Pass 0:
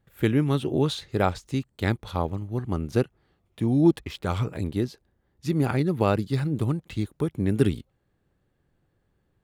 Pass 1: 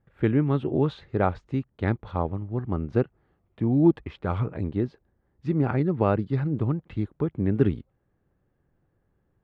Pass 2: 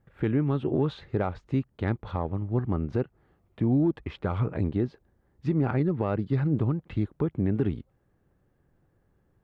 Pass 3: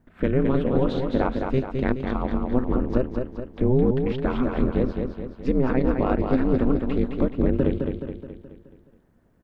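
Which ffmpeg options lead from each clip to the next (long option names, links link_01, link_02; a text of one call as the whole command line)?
ffmpeg -i in.wav -af "lowpass=1800" out.wav
ffmpeg -i in.wav -filter_complex "[0:a]asplit=2[link_01][link_02];[link_02]asoftclip=type=tanh:threshold=-17dB,volume=-8dB[link_03];[link_01][link_03]amix=inputs=2:normalize=0,alimiter=limit=-16.5dB:level=0:latency=1:release=243" out.wav
ffmpeg -i in.wav -filter_complex "[0:a]aeval=exprs='val(0)*sin(2*PI*130*n/s)':channel_layout=same,asplit=2[link_01][link_02];[link_02]aecho=0:1:212|424|636|848|1060|1272:0.562|0.287|0.146|0.0746|0.038|0.0194[link_03];[link_01][link_03]amix=inputs=2:normalize=0,volume=7dB" out.wav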